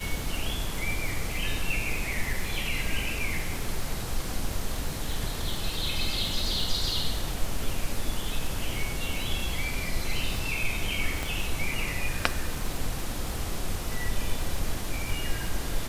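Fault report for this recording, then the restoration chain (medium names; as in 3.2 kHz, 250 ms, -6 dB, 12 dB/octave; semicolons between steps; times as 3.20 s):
crackle 58 per s -31 dBFS
11.23 s: pop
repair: de-click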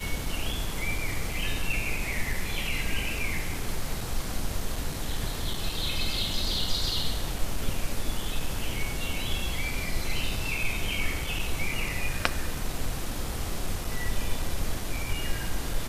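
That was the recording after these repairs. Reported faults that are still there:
11.23 s: pop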